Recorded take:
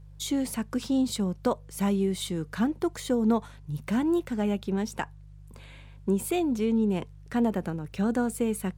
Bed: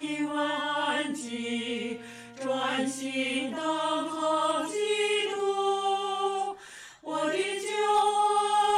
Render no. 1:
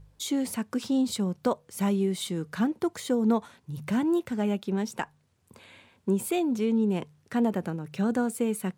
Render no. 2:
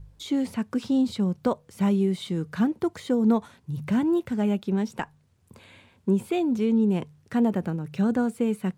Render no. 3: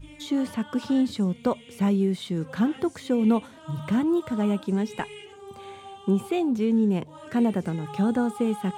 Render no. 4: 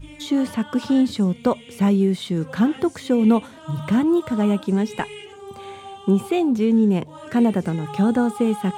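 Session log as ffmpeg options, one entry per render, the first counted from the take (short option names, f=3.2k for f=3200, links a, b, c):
-af "bandreject=f=50:t=h:w=4,bandreject=f=100:t=h:w=4,bandreject=f=150:t=h:w=4"
-filter_complex "[0:a]acrossover=split=4500[a][b];[b]acompressor=threshold=-49dB:ratio=4:attack=1:release=60[c];[a][c]amix=inputs=2:normalize=0,lowshelf=f=180:g=8.5"
-filter_complex "[1:a]volume=-15.5dB[a];[0:a][a]amix=inputs=2:normalize=0"
-af "volume=5dB"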